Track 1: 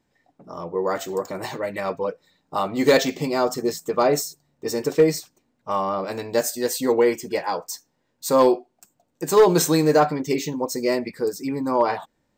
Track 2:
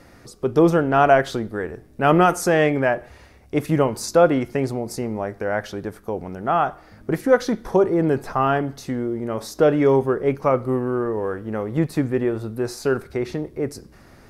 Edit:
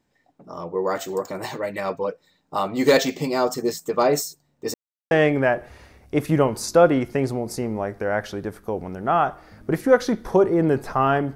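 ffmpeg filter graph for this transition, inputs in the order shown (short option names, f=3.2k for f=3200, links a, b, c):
-filter_complex "[0:a]apad=whole_dur=11.35,atrim=end=11.35,asplit=2[a][b];[a]atrim=end=4.74,asetpts=PTS-STARTPTS,afade=t=out:st=4.736:d=0.004:c=hsin[c];[b]atrim=start=4.74:end=5.11,asetpts=PTS-STARTPTS,volume=0[d];[1:a]atrim=start=2.51:end=8.75,asetpts=PTS-STARTPTS,afade=t=in:d=0.004:c=hsin[e];[c][d][e]concat=n=3:v=0:a=1"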